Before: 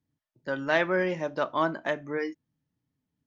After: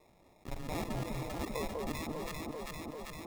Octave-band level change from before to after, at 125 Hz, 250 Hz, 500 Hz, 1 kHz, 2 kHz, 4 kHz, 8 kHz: −0.5 dB, −6.5 dB, −12.5 dB, −10.5 dB, −16.5 dB, −5.5 dB, can't be measured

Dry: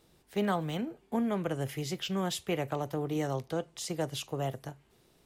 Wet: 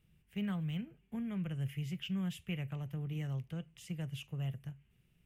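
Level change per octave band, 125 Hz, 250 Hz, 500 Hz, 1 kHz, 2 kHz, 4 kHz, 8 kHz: −0.5, −5.0, −18.5, −19.0, −8.0, −9.0, −16.0 decibels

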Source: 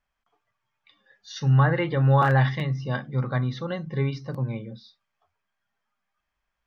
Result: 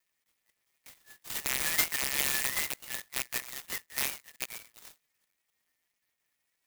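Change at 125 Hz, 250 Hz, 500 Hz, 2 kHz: −34.0, −22.0, −19.0, −3.0 decibels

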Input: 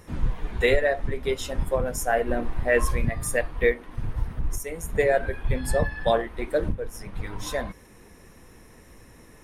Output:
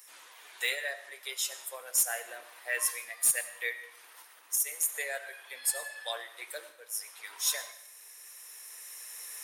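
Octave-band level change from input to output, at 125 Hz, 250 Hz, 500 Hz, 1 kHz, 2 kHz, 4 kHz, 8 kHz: below −40 dB, below −30 dB, −20.5 dB, −15.0 dB, −6.0 dB, +1.0 dB, +7.5 dB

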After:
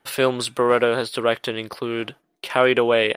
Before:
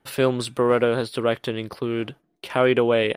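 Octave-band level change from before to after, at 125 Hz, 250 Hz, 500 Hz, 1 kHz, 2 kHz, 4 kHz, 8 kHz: −4.5, −1.5, +1.0, +4.0, +4.5, +5.0, +5.0 decibels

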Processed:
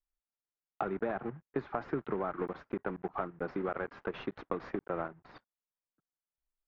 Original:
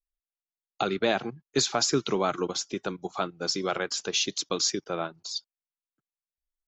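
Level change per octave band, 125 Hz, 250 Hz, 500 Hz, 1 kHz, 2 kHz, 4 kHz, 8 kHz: −6.5 dB, −6.0 dB, −6.5 dB, −6.5 dB, −9.0 dB, −30.0 dB, below −40 dB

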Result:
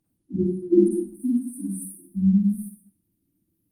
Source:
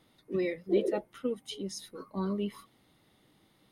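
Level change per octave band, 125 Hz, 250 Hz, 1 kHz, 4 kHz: +15.0 dB, +13.5 dB, below −20 dB, below −20 dB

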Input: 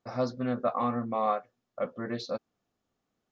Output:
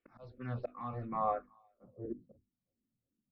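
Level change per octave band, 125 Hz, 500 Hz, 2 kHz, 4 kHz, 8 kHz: −3.5 dB, −11.0 dB, −11.5 dB, below −20 dB, can't be measured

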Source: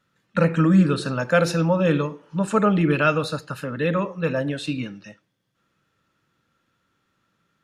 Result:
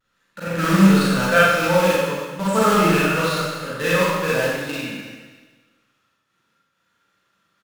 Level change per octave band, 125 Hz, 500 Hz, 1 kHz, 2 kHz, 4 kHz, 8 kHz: −0.5, +3.0, +6.0, +7.0, +8.0, +10.0 decibels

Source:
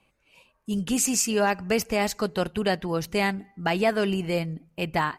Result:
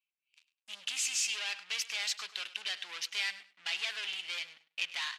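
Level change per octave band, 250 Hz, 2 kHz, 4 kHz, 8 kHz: below −40 dB, −6.0 dB, +0.5 dB, −7.0 dB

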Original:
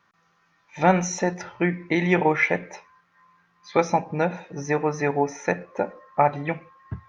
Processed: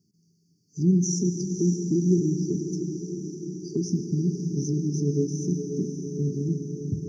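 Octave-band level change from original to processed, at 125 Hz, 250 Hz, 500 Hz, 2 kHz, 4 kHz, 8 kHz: +5.0 dB, +3.0 dB, −6.5 dB, below −40 dB, −2.5 dB, can't be measured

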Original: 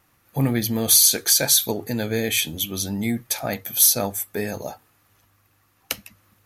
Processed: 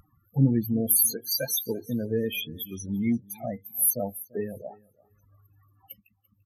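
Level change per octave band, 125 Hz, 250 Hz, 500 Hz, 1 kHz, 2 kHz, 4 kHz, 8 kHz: −1.0, −1.5, −4.0, −10.5, −11.5, −13.0, −10.5 decibels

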